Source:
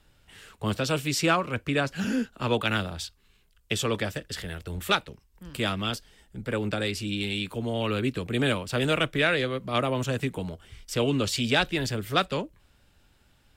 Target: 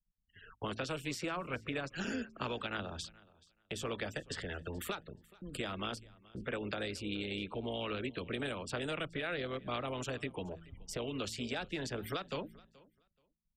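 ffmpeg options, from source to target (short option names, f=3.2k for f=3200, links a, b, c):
-filter_complex "[0:a]afftfilt=real='re*gte(hypot(re,im),0.00794)':imag='im*gte(hypot(re,im),0.00794)':win_size=1024:overlap=0.75,agate=range=-19dB:threshold=-54dB:ratio=16:detection=peak,highshelf=f=3k:g=-11.5,bandreject=f=55.29:t=h:w=4,bandreject=f=110.58:t=h:w=4,bandreject=f=165.87:t=h:w=4,bandreject=f=221.16:t=h:w=4,tremolo=f=170:d=0.519,acrossover=split=500|4700[a][b][c];[c]dynaudnorm=f=150:g=13:m=13dB[d];[a][b][d]amix=inputs=3:normalize=0,alimiter=limit=-23.5dB:level=0:latency=1:release=359,acrossover=split=270|1400[e][f][g];[e]acompressor=threshold=-48dB:ratio=4[h];[f]acompressor=threshold=-41dB:ratio=4[i];[g]acompressor=threshold=-48dB:ratio=4[j];[h][i][j]amix=inputs=3:normalize=0,adynamicequalizer=threshold=0.00126:dfrequency=2300:dqfactor=0.76:tfrequency=2300:tqfactor=0.76:attack=5:release=100:ratio=0.375:range=2.5:mode=boostabove:tftype=bell,asplit=2[k][l];[l]aecho=0:1:428|856:0.0708|0.0127[m];[k][m]amix=inputs=2:normalize=0,volume=2dB"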